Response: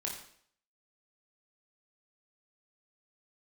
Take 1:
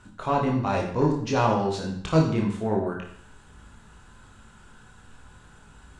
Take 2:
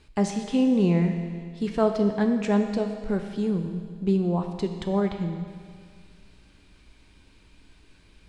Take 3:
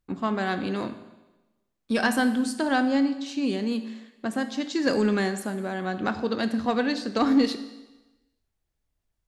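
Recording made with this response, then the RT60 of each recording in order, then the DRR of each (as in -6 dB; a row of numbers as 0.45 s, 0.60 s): 1; 0.60 s, 2.0 s, 1.1 s; -1.5 dB, 5.0 dB, 9.5 dB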